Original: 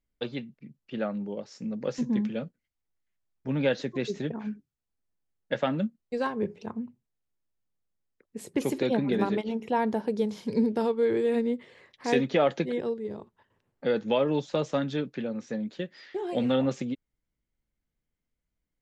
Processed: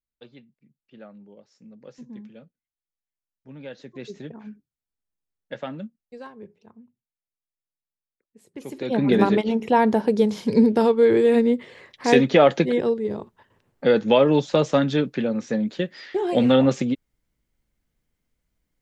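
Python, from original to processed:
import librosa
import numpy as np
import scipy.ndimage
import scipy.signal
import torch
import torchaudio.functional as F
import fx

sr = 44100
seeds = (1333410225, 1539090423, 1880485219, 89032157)

y = fx.gain(x, sr, db=fx.line((3.65, -13.5), (4.08, -5.5), (5.71, -5.5), (6.59, -14.5), (8.45, -14.5), (8.86, -2.0), (9.05, 8.5)))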